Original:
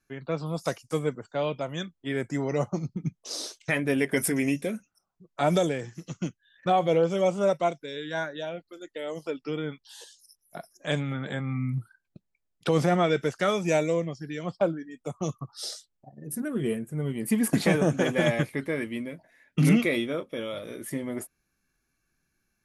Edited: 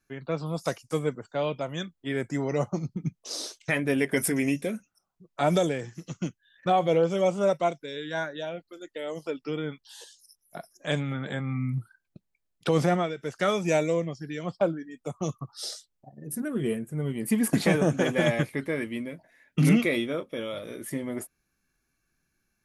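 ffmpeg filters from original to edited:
-filter_complex "[0:a]asplit=3[a][b][c];[a]atrim=end=13.16,asetpts=PTS-STARTPTS,afade=t=out:st=12.9:d=0.26:silence=0.211349[d];[b]atrim=start=13.16:end=13.17,asetpts=PTS-STARTPTS,volume=-13.5dB[e];[c]atrim=start=13.17,asetpts=PTS-STARTPTS,afade=t=in:d=0.26:silence=0.211349[f];[d][e][f]concat=n=3:v=0:a=1"

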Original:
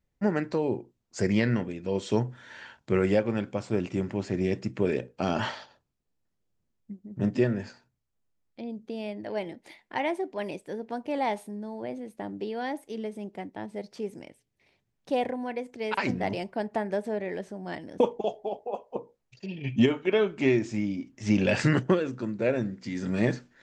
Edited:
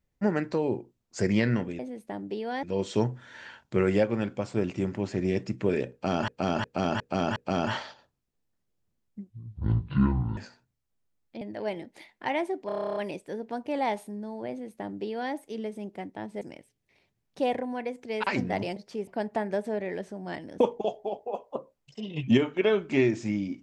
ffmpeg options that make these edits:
-filter_complex "[0:a]asplit=25[a][b][c][d][e][f][g][h][i][j][k][l][m][n][o][p][q][r][s][t][u][v][w][x][y];[a]atrim=end=1.792[z];[b]atrim=start=11.888:end=12.732[aa];[c]atrim=start=1.788:end=5.442[ab];[d]atrim=start=5.078:end=5.442[ac];[e]atrim=start=5.078:end=5.442[ad];[f]atrim=start=5.078:end=5.442[ae];[g]atrim=start=5.078:end=7.024[af];[h]atrim=start=7.02:end=7.61,asetpts=PTS-STARTPTS,asetrate=24255,aresample=44100,atrim=end_sample=47307,asetpts=PTS-STARTPTS[ag];[i]atrim=start=7.606:end=8.652[ah];[j]atrim=start=9.108:end=10.392[ai];[k]atrim=start=10.358:end=10.392[aj];[l]atrim=start=10.358:end=10.392[ak];[m]atrim=start=10.358:end=10.392[al];[n]atrim=start=10.358:end=10.392[am];[o]atrim=start=10.358:end=10.392[an];[p]atrim=start=10.358:end=10.392[ao];[q]atrim=start=10.358:end=10.392[ap];[r]atrim=start=10.358:end=10.392[aq];[s]atrim=start=10.358:end=10.392[ar];[t]atrim=start=10.358:end=13.812[as];[u]atrim=start=14.118:end=16.472[at];[v]atrim=start=13.808:end=14.122[au];[w]atrim=start=16.468:end=18.904[av];[x]atrim=start=18.9:end=19.71,asetpts=PTS-STARTPTS,asetrate=49392,aresample=44100[aw];[y]atrim=start=19.706[ax];[z][aa]acrossfade=d=0.004:c1=hsin:c2=hsin[ay];[ay][ab]acrossfade=d=0.004:c1=hsin:c2=hsin[az];[az][ac]acrossfade=d=0.004:c1=hsin:c2=hsin[ba];[ba][ad]acrossfade=d=0.004:c1=hsin:c2=hsin[bb];[bb][ae]acrossfade=d=0.004:c1=hsin:c2=hsin[bc];[bc][af]acrossfade=d=0.004:c1=hsin:c2=hsin[bd];[bd][ag]acrossfade=d=0.004:c1=hsin:c2=hsin[be];[be][ah]acrossfade=d=0.004:c1=hsin:c2=hsin[bf];[bf][ai]acrossfade=d=0.004:c1=hsin:c2=hsin[bg];[bg][aj]acrossfade=d=0.004:c1=hsin:c2=hsin[bh];[bh][ak]acrossfade=d=0.004:c1=hsin:c2=hsin[bi];[bi][al]acrossfade=d=0.004:c1=hsin:c2=hsin[bj];[bj][am]acrossfade=d=0.004:c1=hsin:c2=hsin[bk];[bk][an]acrossfade=d=0.004:c1=hsin:c2=hsin[bl];[bl][ao]acrossfade=d=0.004:c1=hsin:c2=hsin[bm];[bm][ap]acrossfade=d=0.004:c1=hsin:c2=hsin[bn];[bn][aq]acrossfade=d=0.004:c1=hsin:c2=hsin[bo];[bo][ar]acrossfade=d=0.004:c1=hsin:c2=hsin[bp];[bp][as]acrossfade=d=0.004:c1=hsin:c2=hsin[bq];[bq][at]acrossfade=d=0.004:c1=hsin:c2=hsin[br];[br][au]acrossfade=d=0.004:c1=hsin:c2=hsin[bs];[bs][av]acrossfade=d=0.004:c1=hsin:c2=hsin[bt];[bt][aw]acrossfade=d=0.004:c1=hsin:c2=hsin[bu];[bu][ax]acrossfade=d=0.004:c1=hsin:c2=hsin"

